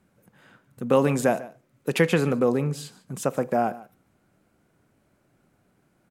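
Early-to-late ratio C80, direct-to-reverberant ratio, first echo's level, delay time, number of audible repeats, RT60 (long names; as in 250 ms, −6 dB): no reverb audible, no reverb audible, −19.0 dB, 147 ms, 1, no reverb audible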